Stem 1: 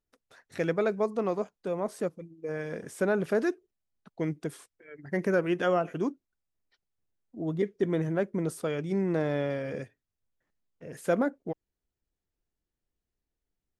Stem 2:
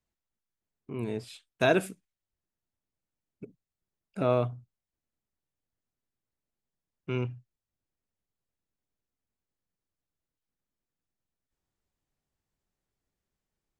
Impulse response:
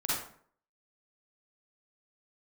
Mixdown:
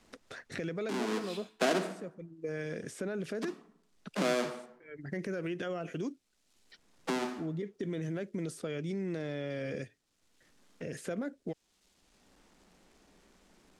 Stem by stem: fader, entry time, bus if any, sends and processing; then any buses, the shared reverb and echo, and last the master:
−2.5 dB, 0.00 s, no send, parametric band 930 Hz −8.5 dB 0.87 octaves; brickwall limiter −27 dBFS, peak gain reduction 11 dB
−1.5 dB, 0.00 s, send −13 dB, each half-wave held at its own peak; Butterworth high-pass 170 Hz 72 dB per octave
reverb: on, RT60 0.55 s, pre-delay 37 ms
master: low-pass filter 8,100 Hz 12 dB per octave; multiband upward and downward compressor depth 70%

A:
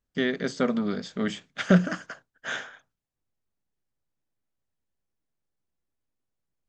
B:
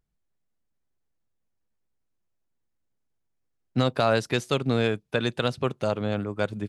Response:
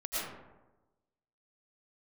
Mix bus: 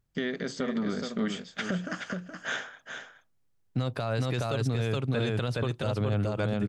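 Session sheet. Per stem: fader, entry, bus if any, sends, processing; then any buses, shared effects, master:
0.0 dB, 0.00 s, no send, echo send −8 dB, downward compressor 6 to 1, threshold −25 dBFS, peak gain reduction 11.5 dB
0.0 dB, 0.00 s, no send, echo send −3 dB, parametric band 110 Hz +9.5 dB 0.67 octaves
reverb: not used
echo: single-tap delay 421 ms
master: brickwall limiter −20 dBFS, peak gain reduction 14 dB

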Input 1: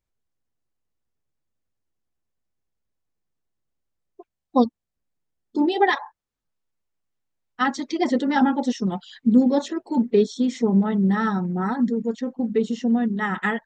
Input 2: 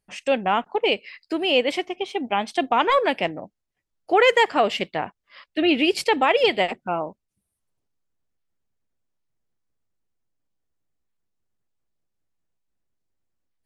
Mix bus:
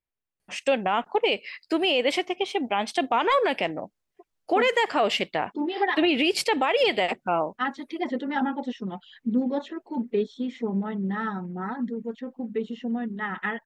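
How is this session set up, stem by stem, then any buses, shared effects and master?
−6.0 dB, 0.00 s, no send, high shelf with overshoot 4,100 Hz −11.5 dB, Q 1.5
+2.5 dB, 0.40 s, no send, no processing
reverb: not used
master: low-shelf EQ 200 Hz −6 dB; brickwall limiter −13 dBFS, peak gain reduction 9.5 dB

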